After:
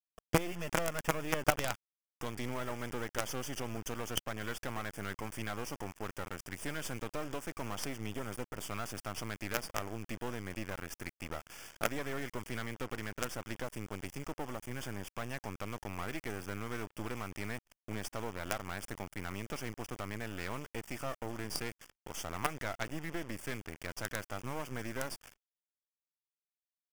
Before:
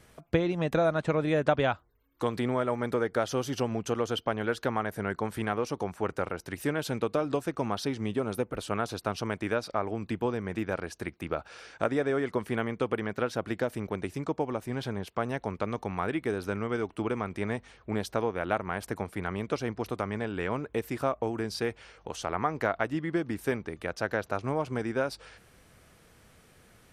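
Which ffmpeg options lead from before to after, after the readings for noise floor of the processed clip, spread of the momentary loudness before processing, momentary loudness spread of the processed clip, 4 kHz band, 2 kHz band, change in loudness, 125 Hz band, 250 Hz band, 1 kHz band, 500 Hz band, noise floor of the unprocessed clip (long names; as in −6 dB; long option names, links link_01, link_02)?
below −85 dBFS, 6 LU, 8 LU, −2.5 dB, −5.0 dB, −8.5 dB, −7.5 dB, −10.0 dB, −8.0 dB, −11.5 dB, −60 dBFS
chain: -af "highshelf=frequency=2100:gain=9.5,aresample=22050,aresample=44100,equalizer=frequency=430:width_type=o:width=0.46:gain=-4.5,acrusher=bits=4:dc=4:mix=0:aa=0.000001,asuperstop=centerf=4000:order=4:qfactor=3.1,aeval=exprs='0.376*(cos(1*acos(clip(val(0)/0.376,-1,1)))-cos(1*PI/2))+0.075*(cos(4*acos(clip(val(0)/0.376,-1,1)))-cos(4*PI/2))+0.0133*(cos(5*acos(clip(val(0)/0.376,-1,1)))-cos(5*PI/2))':channel_layout=same,anlmdn=0.0158,volume=-5dB"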